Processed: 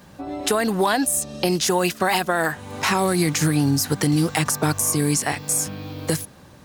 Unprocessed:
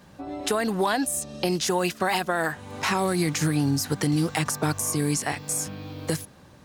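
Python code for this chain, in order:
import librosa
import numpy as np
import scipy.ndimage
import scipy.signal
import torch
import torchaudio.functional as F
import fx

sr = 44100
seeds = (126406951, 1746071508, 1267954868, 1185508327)

y = fx.high_shelf(x, sr, hz=11000.0, db=6.0)
y = y * 10.0 ** (4.0 / 20.0)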